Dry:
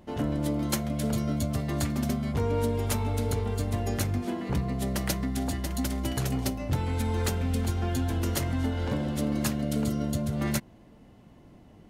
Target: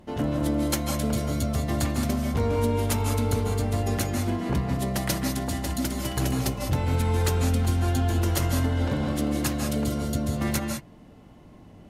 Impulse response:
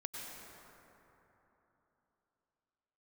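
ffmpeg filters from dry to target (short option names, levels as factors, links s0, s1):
-filter_complex "[1:a]atrim=start_sample=2205,atrim=end_sample=6174,asetrate=28665,aresample=44100[s0];[0:a][s0]afir=irnorm=-1:irlink=0,volume=1.68"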